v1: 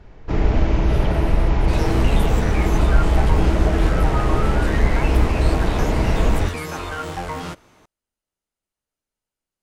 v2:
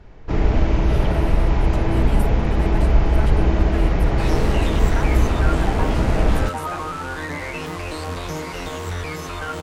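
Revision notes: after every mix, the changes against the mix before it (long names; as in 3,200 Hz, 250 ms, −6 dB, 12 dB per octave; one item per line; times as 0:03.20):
second sound: entry +2.50 s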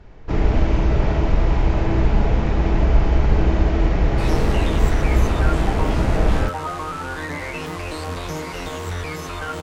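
speech: muted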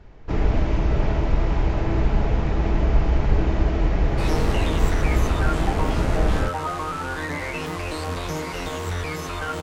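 first sound: send −10.0 dB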